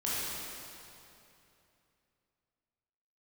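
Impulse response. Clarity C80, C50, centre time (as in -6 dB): -2.5 dB, -5.0 dB, 0.19 s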